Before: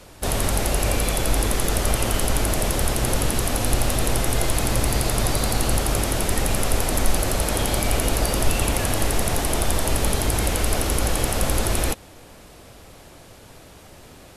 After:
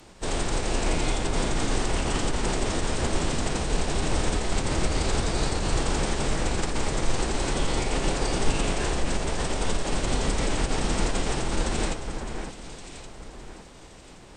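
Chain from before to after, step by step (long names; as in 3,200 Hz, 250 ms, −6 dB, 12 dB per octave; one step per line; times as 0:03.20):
phase-vocoder pitch shift with formants kept −8.5 semitones
delay that swaps between a low-pass and a high-pass 561 ms, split 2,100 Hz, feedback 55%, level −6 dB
level −2.5 dB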